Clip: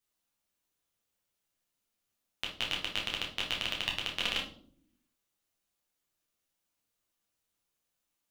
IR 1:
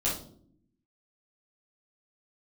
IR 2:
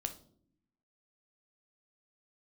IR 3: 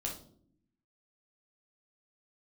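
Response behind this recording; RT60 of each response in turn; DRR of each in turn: 3; not exponential, not exponential, not exponential; -8.0, 6.5, -1.5 dB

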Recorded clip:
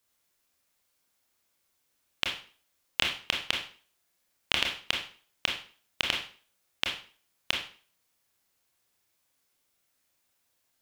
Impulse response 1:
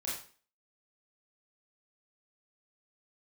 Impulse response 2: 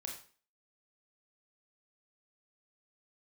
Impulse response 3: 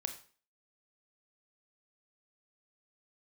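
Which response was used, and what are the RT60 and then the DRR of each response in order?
2; 0.40, 0.40, 0.40 s; -7.0, 0.0, 6.0 dB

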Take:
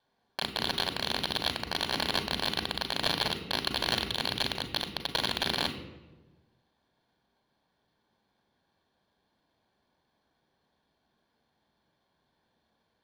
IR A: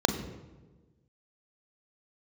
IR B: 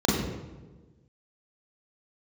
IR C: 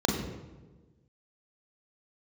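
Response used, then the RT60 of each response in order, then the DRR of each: A; 1.3, 1.3, 1.3 s; 7.0, -5.5, 0.0 dB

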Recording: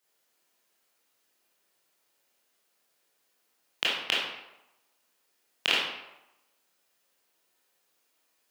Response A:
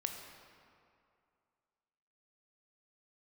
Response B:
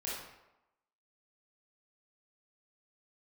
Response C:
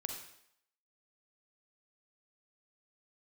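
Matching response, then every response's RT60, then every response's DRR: B; 2.4, 0.95, 0.70 s; 3.5, -7.5, 3.0 dB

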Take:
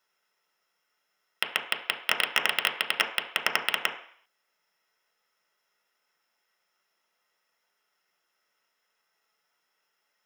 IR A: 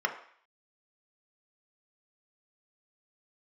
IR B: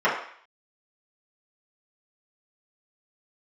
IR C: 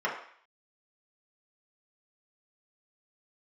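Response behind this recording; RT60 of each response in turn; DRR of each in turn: A; 0.55, 0.55, 0.55 s; 3.0, -10.5, -5.5 dB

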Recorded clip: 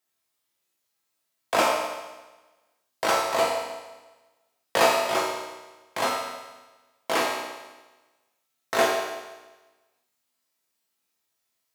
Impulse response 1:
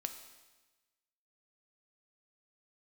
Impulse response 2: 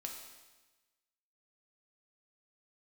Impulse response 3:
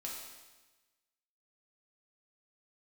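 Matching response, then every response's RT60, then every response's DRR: 3; 1.2, 1.2, 1.2 s; 6.5, 1.0, -3.5 dB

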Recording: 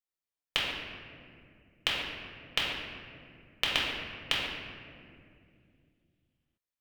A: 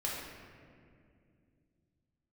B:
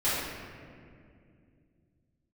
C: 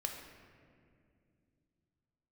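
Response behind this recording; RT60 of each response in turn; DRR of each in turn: A; 2.3, 2.3, 2.4 s; -5.5, -14.5, 2.0 dB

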